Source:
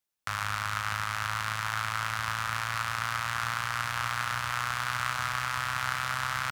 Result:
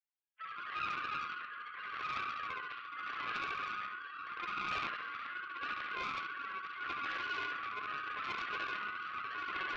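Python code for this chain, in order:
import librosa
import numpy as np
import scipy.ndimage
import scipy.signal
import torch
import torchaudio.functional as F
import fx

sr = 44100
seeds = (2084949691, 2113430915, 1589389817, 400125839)

p1 = fx.sine_speech(x, sr)
p2 = fx.peak_eq(p1, sr, hz=190.0, db=-8.0, octaves=1.5)
p3 = fx.hum_notches(p2, sr, base_hz=50, count=8)
p4 = fx.stretch_vocoder(p3, sr, factor=1.5)
p5 = fx.rotary(p4, sr, hz=0.8)
p6 = fx.resonator_bank(p5, sr, root=37, chord='major', decay_s=0.25)
p7 = p6 + fx.echo_feedback(p6, sr, ms=69, feedback_pct=55, wet_db=-4.0, dry=0)
p8 = fx.doppler_dist(p7, sr, depth_ms=0.5)
y = p8 * librosa.db_to_amplitude(4.0)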